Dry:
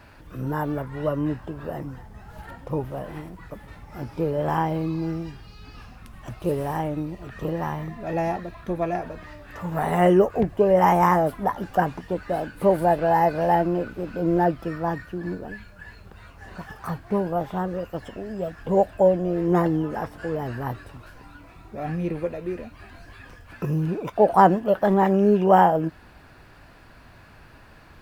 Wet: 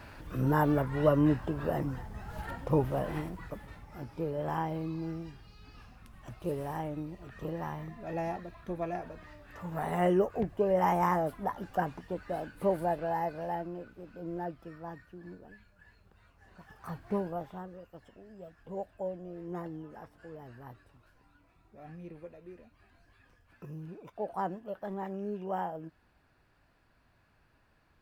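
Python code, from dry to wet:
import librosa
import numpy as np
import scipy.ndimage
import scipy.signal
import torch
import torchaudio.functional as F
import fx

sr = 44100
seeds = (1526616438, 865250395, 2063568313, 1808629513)

y = fx.gain(x, sr, db=fx.line((3.22, 0.5), (4.07, -9.5), (12.67, -9.5), (13.75, -17.0), (16.58, -17.0), (17.1, -7.0), (17.77, -19.0)))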